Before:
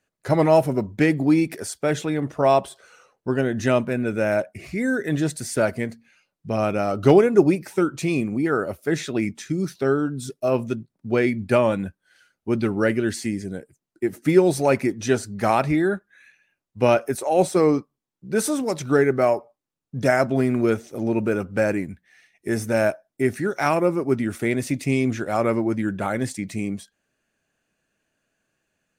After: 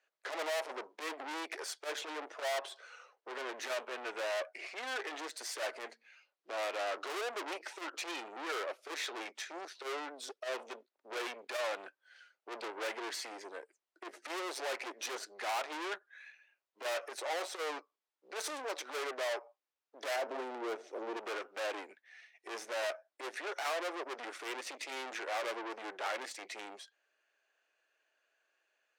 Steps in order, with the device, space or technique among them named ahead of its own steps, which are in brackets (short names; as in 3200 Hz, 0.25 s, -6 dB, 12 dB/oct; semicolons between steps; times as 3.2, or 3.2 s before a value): valve radio (BPF 140–4600 Hz; tube stage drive 33 dB, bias 0.65; core saturation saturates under 100 Hz); Bessel high-pass 660 Hz, order 8; 20.16–21.17 tilt shelf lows +6.5 dB, about 910 Hz; gain +2.5 dB